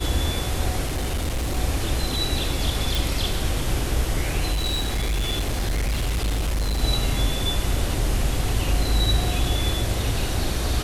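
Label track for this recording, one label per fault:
0.860000	1.580000	clipped -21 dBFS
2.950000	2.950000	pop
4.520000	6.830000	clipped -20 dBFS

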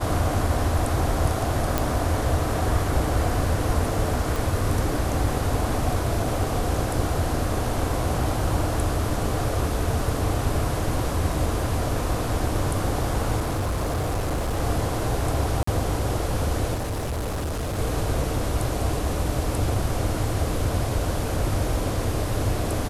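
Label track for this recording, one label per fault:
1.780000	1.780000	pop
4.360000	4.360000	pop
13.390000	14.600000	clipped -21.5 dBFS
15.630000	15.670000	gap 44 ms
16.740000	17.790000	clipped -24.5 dBFS

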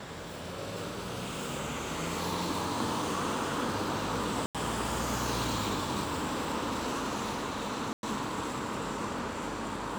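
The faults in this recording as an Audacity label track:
4.460000	4.550000	gap 87 ms
7.930000	8.030000	gap 0.101 s

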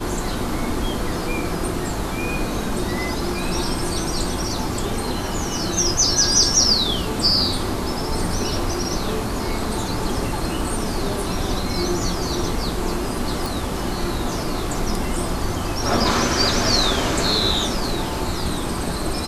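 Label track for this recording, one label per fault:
13.460000	13.460000	pop

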